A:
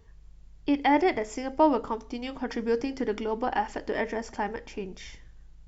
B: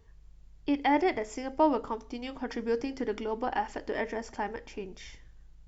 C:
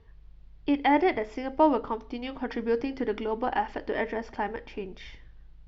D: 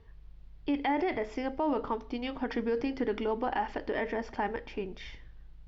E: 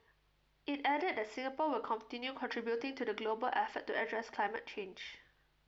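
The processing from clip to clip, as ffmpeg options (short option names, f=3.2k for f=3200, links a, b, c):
-af "equalizer=f=190:w=4.9:g=-3.5,volume=-3dB"
-af "lowpass=f=4.3k:w=0.5412,lowpass=f=4.3k:w=1.3066,volume=3dB"
-af "alimiter=limit=-21.5dB:level=0:latency=1:release=30"
-af "highpass=f=820:p=1"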